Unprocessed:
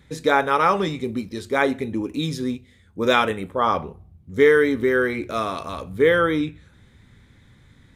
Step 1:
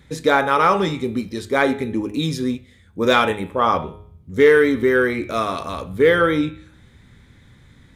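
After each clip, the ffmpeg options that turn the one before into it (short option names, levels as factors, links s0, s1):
-af "bandreject=f=104.3:t=h:w=4,bandreject=f=208.6:t=h:w=4,bandreject=f=312.9:t=h:w=4,bandreject=f=417.2:t=h:w=4,bandreject=f=521.5:t=h:w=4,bandreject=f=625.8:t=h:w=4,bandreject=f=730.1:t=h:w=4,bandreject=f=834.4:t=h:w=4,bandreject=f=938.7:t=h:w=4,bandreject=f=1043:t=h:w=4,bandreject=f=1147.3:t=h:w=4,bandreject=f=1251.6:t=h:w=4,bandreject=f=1355.9:t=h:w=4,bandreject=f=1460.2:t=h:w=4,bandreject=f=1564.5:t=h:w=4,bandreject=f=1668.8:t=h:w=4,bandreject=f=1773.1:t=h:w=4,bandreject=f=1877.4:t=h:w=4,bandreject=f=1981.7:t=h:w=4,bandreject=f=2086:t=h:w=4,bandreject=f=2190.3:t=h:w=4,bandreject=f=2294.6:t=h:w=4,bandreject=f=2398.9:t=h:w=4,bandreject=f=2503.2:t=h:w=4,bandreject=f=2607.5:t=h:w=4,bandreject=f=2711.8:t=h:w=4,bandreject=f=2816.1:t=h:w=4,bandreject=f=2920.4:t=h:w=4,bandreject=f=3024.7:t=h:w=4,bandreject=f=3129:t=h:w=4,bandreject=f=3233.3:t=h:w=4,bandreject=f=3337.6:t=h:w=4,bandreject=f=3441.9:t=h:w=4,bandreject=f=3546.2:t=h:w=4,bandreject=f=3650.5:t=h:w=4,bandreject=f=3754.8:t=h:w=4,bandreject=f=3859.1:t=h:w=4,bandreject=f=3963.4:t=h:w=4,bandreject=f=4067.7:t=h:w=4,acontrast=22,volume=0.841"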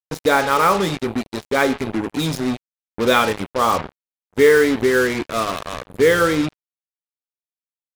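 -af "acrusher=bits=3:mix=0:aa=0.5"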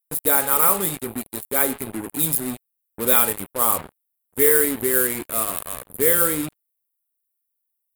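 -af "aexciter=amount=12.3:drive=8.7:freq=8600,volume=0.422"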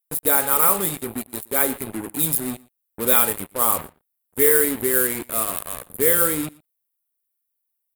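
-af "aecho=1:1:118:0.0668"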